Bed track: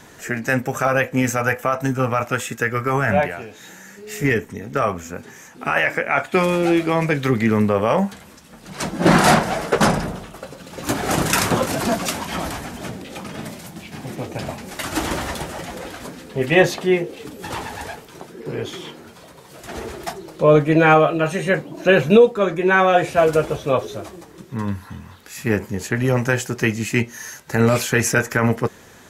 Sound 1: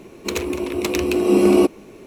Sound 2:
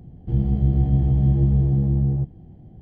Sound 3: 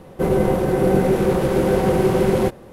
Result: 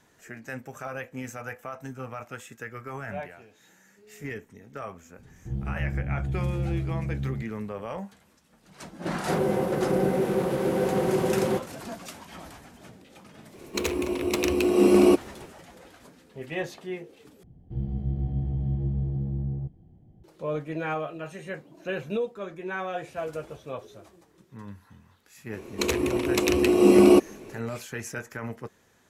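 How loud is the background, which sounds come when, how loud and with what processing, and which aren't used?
bed track −17.5 dB
0:05.18: mix in 2 −11 dB
0:09.09: mix in 3 −7 dB + high-pass filter 130 Hz
0:13.49: mix in 1 −3.5 dB, fades 0.10 s
0:17.43: overwrite with 2 −10 dB
0:25.53: mix in 1 −1.5 dB + downsampling to 32,000 Hz

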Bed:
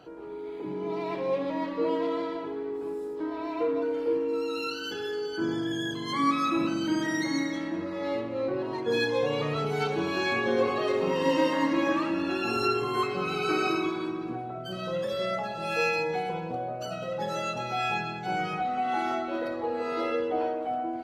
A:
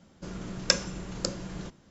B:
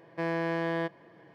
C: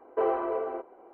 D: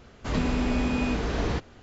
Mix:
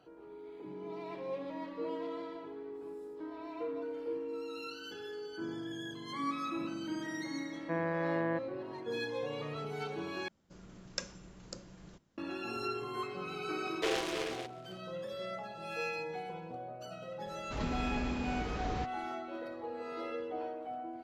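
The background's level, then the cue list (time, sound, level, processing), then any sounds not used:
bed −11 dB
0:07.51: mix in B −3 dB + low-pass filter 2,100 Hz 24 dB per octave
0:10.28: overwrite with A −15 dB
0:13.65: mix in C −7 dB + short delay modulated by noise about 2,200 Hz, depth 0.18 ms
0:17.26: mix in D −10 dB

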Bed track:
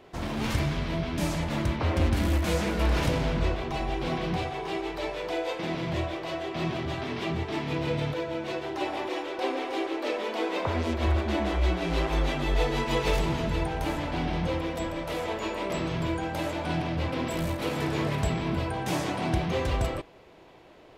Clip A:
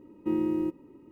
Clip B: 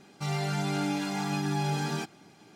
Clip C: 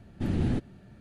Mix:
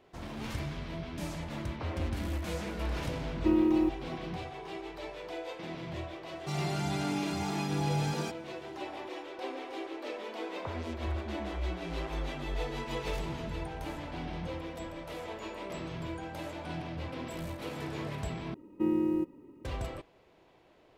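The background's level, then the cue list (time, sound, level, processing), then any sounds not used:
bed track −9.5 dB
0:03.19: mix in A −1 dB + comb filter 3.2 ms, depth 45%
0:06.26: mix in B −3 dB + parametric band 1,700 Hz −6.5 dB 0.23 octaves
0:18.54: overwrite with A −1 dB
not used: C

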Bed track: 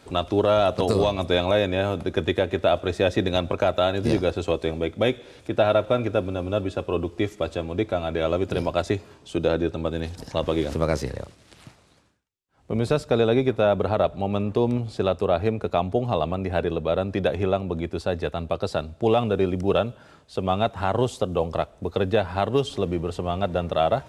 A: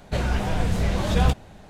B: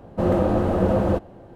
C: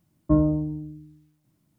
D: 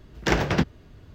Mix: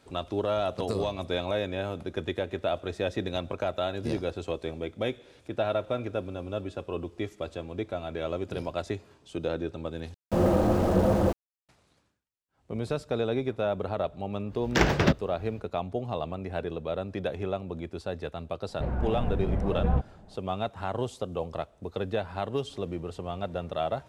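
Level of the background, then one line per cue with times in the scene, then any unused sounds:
bed track −8.5 dB
0:10.14: overwrite with B −3 dB + centre clipping without the shift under −33 dBFS
0:14.49: mix in D −0.5 dB, fades 0.05 s
0:18.68: mix in A −5.5 dB + low-pass filter 1,000 Hz
not used: C

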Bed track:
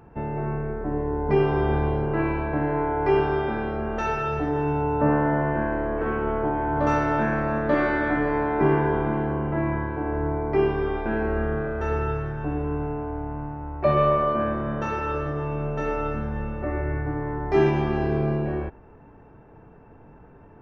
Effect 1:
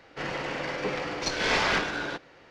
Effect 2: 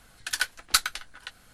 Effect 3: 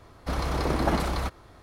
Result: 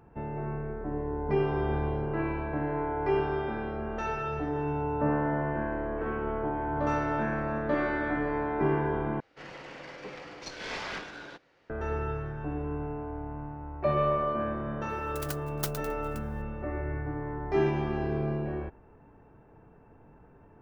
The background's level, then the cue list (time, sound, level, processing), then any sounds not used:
bed track −6.5 dB
0:09.20: overwrite with 1 −12 dB
0:14.89: mix in 2 −12 dB + converter with an unsteady clock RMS 0.14 ms
not used: 3

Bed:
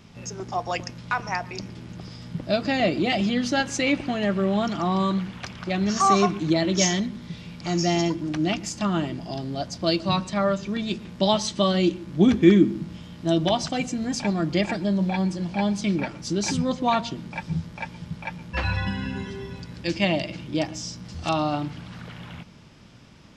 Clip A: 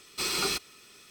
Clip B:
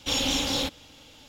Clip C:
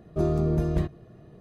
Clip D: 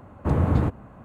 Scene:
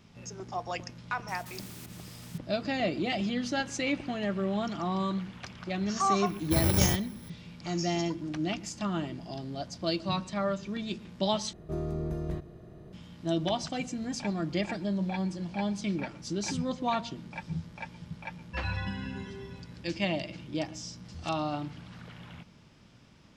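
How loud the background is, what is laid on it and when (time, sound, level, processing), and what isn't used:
bed −7.5 dB
0:01.28: mix in A −17.5 dB + every bin compressed towards the loudest bin 10 to 1
0:06.26: mix in D −5.5 dB + samples in bit-reversed order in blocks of 64 samples
0:11.53: overwrite with C −11 dB + compressor on every frequency bin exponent 0.6
not used: B

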